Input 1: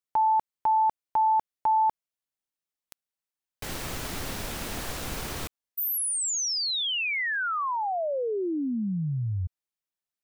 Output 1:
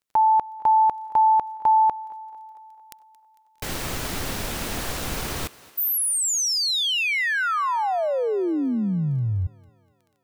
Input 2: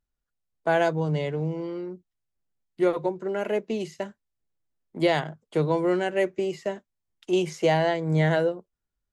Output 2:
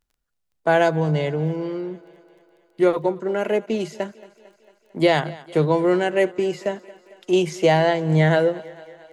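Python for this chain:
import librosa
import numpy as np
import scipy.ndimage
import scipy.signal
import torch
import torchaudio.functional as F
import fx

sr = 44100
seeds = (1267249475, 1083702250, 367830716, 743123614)

y = fx.dmg_crackle(x, sr, seeds[0], per_s=12.0, level_db=-53.0)
y = fx.echo_thinned(y, sr, ms=225, feedback_pct=65, hz=230.0, wet_db=-20)
y = y * librosa.db_to_amplitude(5.0)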